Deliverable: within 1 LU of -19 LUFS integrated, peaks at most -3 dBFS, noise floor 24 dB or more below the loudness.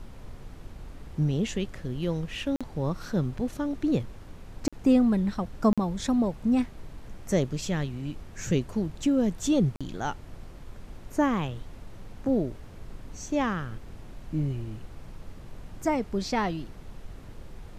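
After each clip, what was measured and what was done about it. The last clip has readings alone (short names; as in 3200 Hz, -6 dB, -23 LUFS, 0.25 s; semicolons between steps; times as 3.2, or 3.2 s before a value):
dropouts 4; longest dropout 46 ms; noise floor -46 dBFS; noise floor target -53 dBFS; loudness -28.5 LUFS; peak -10.5 dBFS; loudness target -19.0 LUFS
-> interpolate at 2.56/4.68/5.73/9.76, 46 ms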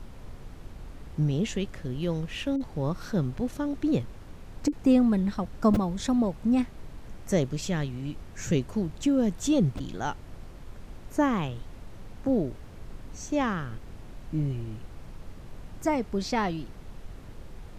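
dropouts 0; noise floor -45 dBFS; noise floor target -53 dBFS
-> noise print and reduce 8 dB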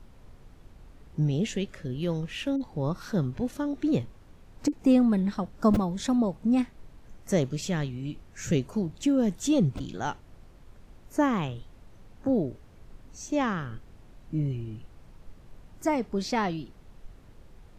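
noise floor -53 dBFS; loudness -28.5 LUFS; peak -11.0 dBFS; loudness target -19.0 LUFS
-> gain +9.5 dB; limiter -3 dBFS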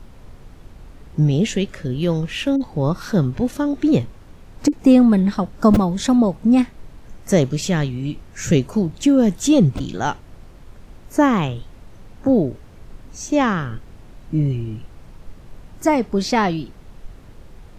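loudness -19.0 LUFS; peak -3.0 dBFS; noise floor -43 dBFS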